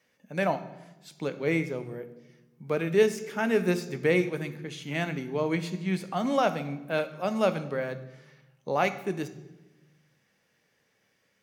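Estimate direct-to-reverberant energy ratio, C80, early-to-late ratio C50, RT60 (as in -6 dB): 10.0 dB, 16.0 dB, 14.0 dB, 1.1 s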